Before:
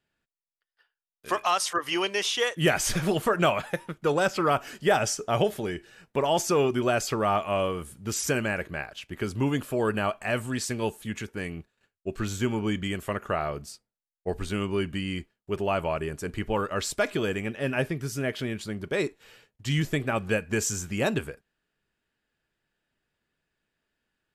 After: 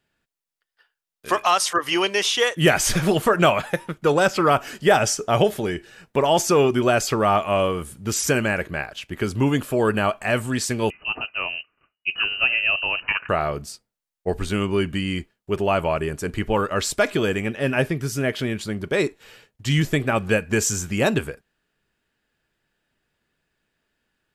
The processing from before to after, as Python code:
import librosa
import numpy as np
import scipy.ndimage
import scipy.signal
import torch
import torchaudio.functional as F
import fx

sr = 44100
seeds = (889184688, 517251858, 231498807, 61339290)

y = fx.freq_invert(x, sr, carrier_hz=2900, at=(10.9, 13.29))
y = F.gain(torch.from_numpy(y), 6.0).numpy()